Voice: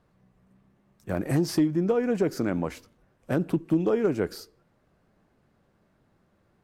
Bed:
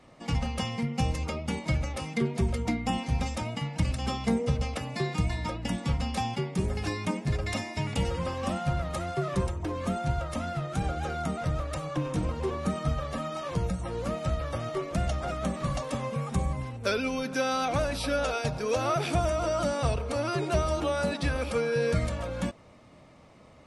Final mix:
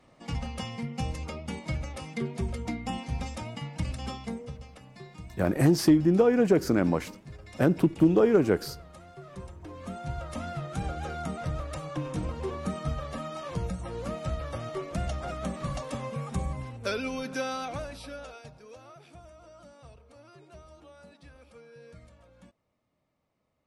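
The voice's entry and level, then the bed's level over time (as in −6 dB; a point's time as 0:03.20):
4.30 s, +3.0 dB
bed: 0:04.05 −4.5 dB
0:04.67 −16.5 dB
0:09.19 −16.5 dB
0:10.40 −3 dB
0:17.36 −3 dB
0:18.95 −24 dB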